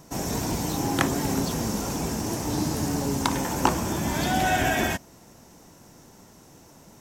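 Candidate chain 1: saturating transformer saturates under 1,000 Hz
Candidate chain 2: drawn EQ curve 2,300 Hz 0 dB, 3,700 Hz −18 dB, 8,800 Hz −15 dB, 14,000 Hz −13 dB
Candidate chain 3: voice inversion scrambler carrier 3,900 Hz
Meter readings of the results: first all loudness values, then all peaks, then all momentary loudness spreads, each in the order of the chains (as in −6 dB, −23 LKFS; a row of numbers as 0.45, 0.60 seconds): −27.0, −27.0, −23.0 LKFS; −2.0, −4.5, −3.5 dBFS; 5, 6, 5 LU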